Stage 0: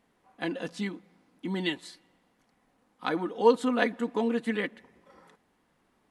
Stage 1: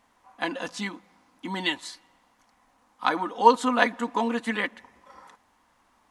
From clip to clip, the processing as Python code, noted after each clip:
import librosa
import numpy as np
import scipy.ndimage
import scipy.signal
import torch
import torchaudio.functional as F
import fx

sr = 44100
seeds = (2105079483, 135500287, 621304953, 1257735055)

y = fx.graphic_eq_15(x, sr, hz=(160, 400, 1000, 6300), db=(-11, -9, 7, 5))
y = y * librosa.db_to_amplitude(5.0)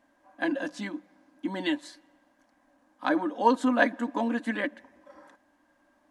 y = fx.small_body(x, sr, hz=(300.0, 580.0, 1600.0), ring_ms=55, db=18)
y = y * librosa.db_to_amplitude(-8.0)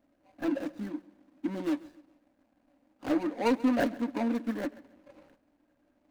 y = scipy.signal.medfilt(x, 41)
y = fx.echo_feedback(y, sr, ms=136, feedback_pct=33, wet_db=-20.5)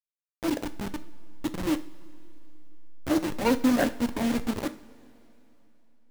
y = fx.delta_hold(x, sr, step_db=-29.0)
y = fx.rev_double_slope(y, sr, seeds[0], early_s=0.42, late_s=3.3, knee_db=-18, drr_db=9.0)
y = y * librosa.db_to_amplitude(3.5)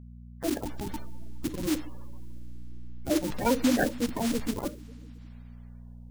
y = fx.spec_quant(x, sr, step_db=30)
y = fx.dmg_buzz(y, sr, base_hz=60.0, harmonics=4, level_db=-45.0, tilt_db=-5, odd_only=False)
y = y * librosa.db_to_amplitude(-1.0)